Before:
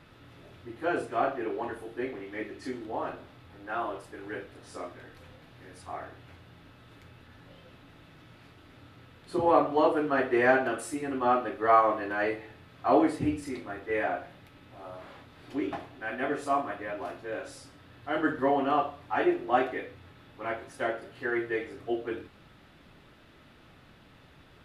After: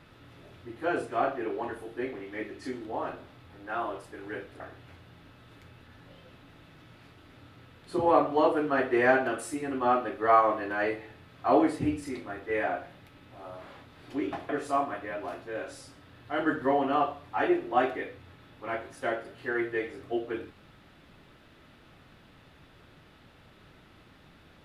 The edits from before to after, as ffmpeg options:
-filter_complex "[0:a]asplit=3[a][b][c];[a]atrim=end=4.602[d];[b]atrim=start=5.998:end=15.892[e];[c]atrim=start=16.258[f];[d][e]acrossfade=d=0.004:c1=hsin:c2=hsin[g];[g][f]acrossfade=d=0.004:c1=hsin:c2=hsin"

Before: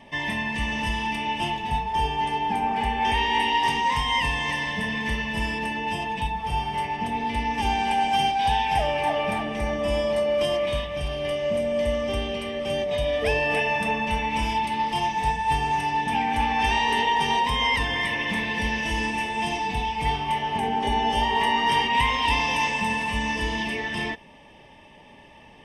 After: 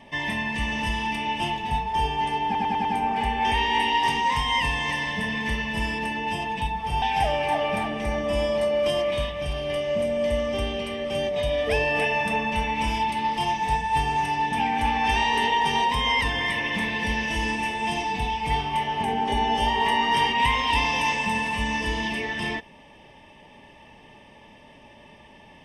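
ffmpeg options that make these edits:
-filter_complex "[0:a]asplit=6[a][b][c][d][e][f];[a]atrim=end=2.552[g];[b]atrim=start=2.448:end=2.552[h];[c]atrim=start=2.448:end=2.552[i];[d]atrim=start=2.448:end=2.552[j];[e]atrim=start=2.448:end=6.622[k];[f]atrim=start=8.568[l];[g][h]acrossfade=d=0.004:c1=hsin:c2=hsin[m];[m][i]acrossfade=d=0.004:c1=hsin:c2=hsin[n];[n][j]acrossfade=d=0.004:c1=hsin:c2=hsin[o];[o][k]acrossfade=d=0.004:c1=hsin:c2=hsin[p];[p][l]acrossfade=d=0.004:c1=hsin:c2=hsin"

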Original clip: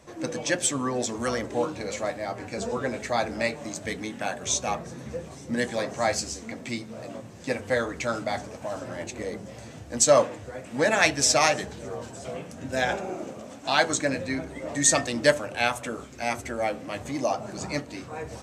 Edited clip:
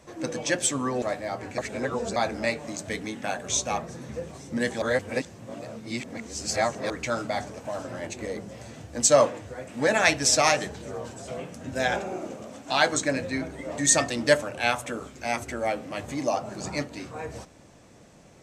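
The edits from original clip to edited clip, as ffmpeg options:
-filter_complex "[0:a]asplit=6[a][b][c][d][e][f];[a]atrim=end=1.022[g];[b]atrim=start=1.988:end=2.552[h];[c]atrim=start=2.548:end=3.132,asetpts=PTS-STARTPTS,areverse[i];[d]atrim=start=3.128:end=5.792[j];[e]atrim=start=5.788:end=7.872,asetpts=PTS-STARTPTS,areverse[k];[f]atrim=start=7.868[l];[g][h]acrossfade=d=0.004:c1=hsin:c2=hsin[m];[m][i]acrossfade=d=0.004:c1=hsin:c2=hsin[n];[n][j]acrossfade=d=0.004:c1=hsin:c2=hsin[o];[o][k]acrossfade=d=0.004:c1=hsin:c2=hsin[p];[p][l]acrossfade=d=0.004:c1=hsin:c2=hsin"

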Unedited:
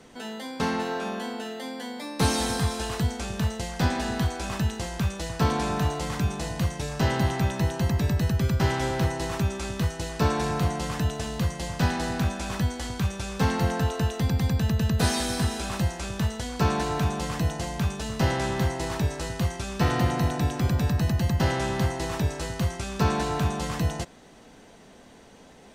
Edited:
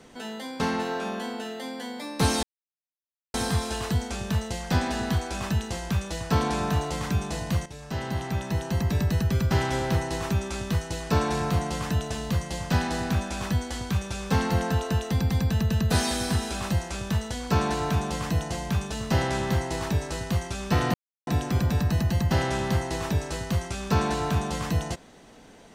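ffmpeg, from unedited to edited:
-filter_complex "[0:a]asplit=5[a][b][c][d][e];[a]atrim=end=2.43,asetpts=PTS-STARTPTS,afade=t=out:st=2.426:d=0.004:c=hsin,apad=pad_dur=0.91[f];[b]atrim=start=2.43:end=6.75,asetpts=PTS-STARTPTS,afade=t=in:d=0.004:c=hsin,afade=t=out:st=4.316:d=0.004:c=hsin:silence=0.251189[g];[c]atrim=start=6.75:end=20.03,asetpts=PTS-STARTPTS,afade=t=in:d=1.35:silence=0.251189,afade=t=out:st=13.276:d=0.004:c=hsin[h];[d]atrim=start=20.03:end=20.36,asetpts=PTS-STARTPTS,volume=0[i];[e]atrim=start=20.36,asetpts=PTS-STARTPTS,afade=t=in:d=0.004:c=hsin[j];[f][g][h][i][j]concat=n=5:v=0:a=1"

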